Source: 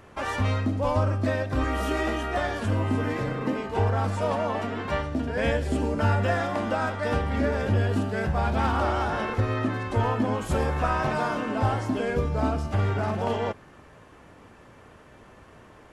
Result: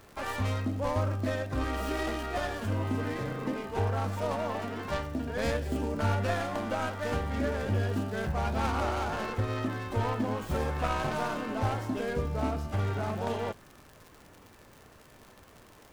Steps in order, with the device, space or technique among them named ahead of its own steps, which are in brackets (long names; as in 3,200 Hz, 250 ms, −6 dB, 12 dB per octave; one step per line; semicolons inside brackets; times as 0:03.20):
record under a worn stylus (stylus tracing distortion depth 0.18 ms; surface crackle 95 per second −35 dBFS; pink noise bed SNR 31 dB)
level −5.5 dB